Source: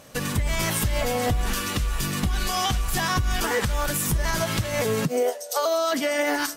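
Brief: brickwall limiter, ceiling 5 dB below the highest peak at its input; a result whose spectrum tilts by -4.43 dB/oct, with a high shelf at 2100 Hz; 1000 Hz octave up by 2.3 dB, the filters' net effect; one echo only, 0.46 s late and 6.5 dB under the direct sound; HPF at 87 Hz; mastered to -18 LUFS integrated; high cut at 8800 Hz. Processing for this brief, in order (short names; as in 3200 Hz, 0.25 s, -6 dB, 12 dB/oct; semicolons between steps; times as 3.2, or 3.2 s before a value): HPF 87 Hz; LPF 8800 Hz; bell 1000 Hz +4 dB; high shelf 2100 Hz -4.5 dB; limiter -17 dBFS; echo 0.46 s -6.5 dB; gain +8 dB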